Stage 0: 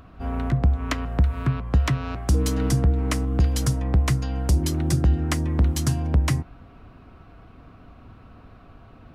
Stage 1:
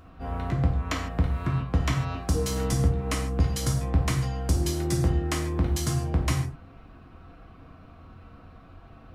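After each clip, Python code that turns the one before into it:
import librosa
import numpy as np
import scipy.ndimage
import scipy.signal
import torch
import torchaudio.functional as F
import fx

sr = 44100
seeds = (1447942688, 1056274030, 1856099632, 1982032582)

y = fx.rev_gated(x, sr, seeds[0], gate_ms=180, shape='falling', drr_db=-0.5)
y = y * librosa.db_to_amplitude(-4.5)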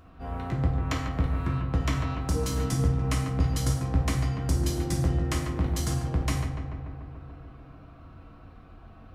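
y = fx.echo_filtered(x, sr, ms=145, feedback_pct=78, hz=2200.0, wet_db=-7.0)
y = y * librosa.db_to_amplitude(-2.5)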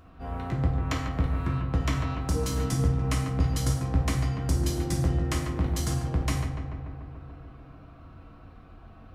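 y = x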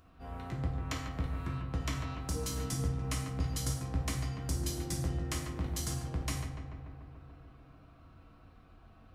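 y = fx.high_shelf(x, sr, hz=3000.0, db=7.5)
y = y * librosa.db_to_amplitude(-9.0)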